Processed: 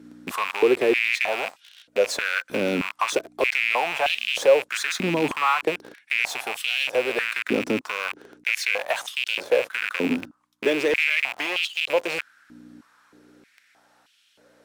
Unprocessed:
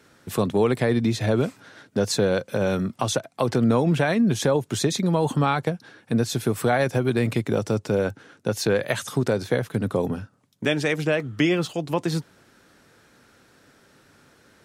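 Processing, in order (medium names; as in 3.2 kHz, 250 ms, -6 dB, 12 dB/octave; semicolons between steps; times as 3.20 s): rattle on loud lows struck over -32 dBFS, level -13 dBFS; hum 60 Hz, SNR 16 dB; in parallel at -10.5 dB: Schmitt trigger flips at -32 dBFS; on the sum: step-sequenced high-pass 3.2 Hz 270–3000 Hz; trim -5.5 dB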